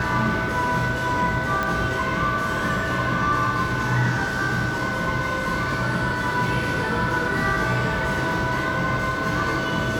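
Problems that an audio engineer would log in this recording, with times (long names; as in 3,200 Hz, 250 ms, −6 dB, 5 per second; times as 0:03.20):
whistle 1,500 Hz −27 dBFS
0:01.63: click −11 dBFS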